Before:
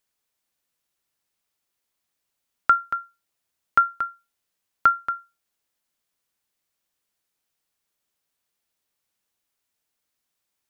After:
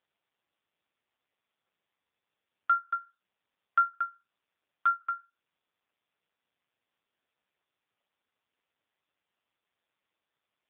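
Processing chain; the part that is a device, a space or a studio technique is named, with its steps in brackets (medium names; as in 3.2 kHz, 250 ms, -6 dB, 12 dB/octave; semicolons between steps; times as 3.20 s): 2.81–3.90 s: dynamic bell 580 Hz, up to -5 dB, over -47 dBFS, Q 4.9; telephone (band-pass 310–3000 Hz; saturation -12 dBFS, distortion -15 dB; trim -2.5 dB; AMR-NB 5.15 kbps 8 kHz)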